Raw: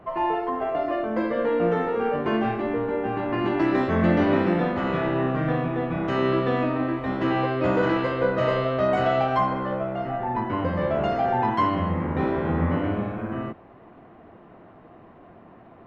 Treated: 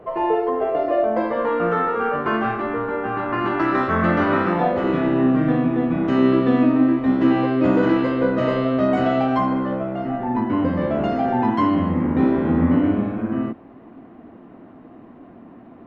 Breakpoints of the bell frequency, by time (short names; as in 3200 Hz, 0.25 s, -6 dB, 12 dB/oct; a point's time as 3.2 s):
bell +12.5 dB 0.69 oct
0.84 s 460 Hz
1.63 s 1300 Hz
4.49 s 1300 Hz
4.97 s 260 Hz